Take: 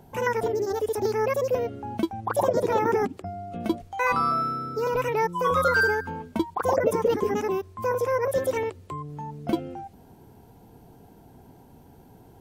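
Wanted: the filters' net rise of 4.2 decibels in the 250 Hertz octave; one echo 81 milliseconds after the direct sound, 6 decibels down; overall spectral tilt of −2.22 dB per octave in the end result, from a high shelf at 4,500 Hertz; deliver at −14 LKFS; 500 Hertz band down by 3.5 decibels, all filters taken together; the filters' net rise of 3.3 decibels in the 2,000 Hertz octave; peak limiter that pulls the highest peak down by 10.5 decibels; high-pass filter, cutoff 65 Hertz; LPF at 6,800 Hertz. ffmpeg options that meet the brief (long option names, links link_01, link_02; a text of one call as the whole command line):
ffmpeg -i in.wav -af "highpass=65,lowpass=6800,equalizer=frequency=250:width_type=o:gain=8,equalizer=frequency=500:width_type=o:gain=-6.5,equalizer=frequency=2000:width_type=o:gain=6,highshelf=frequency=4500:gain=-6,alimiter=limit=-20dB:level=0:latency=1,aecho=1:1:81:0.501,volume=14.5dB" out.wav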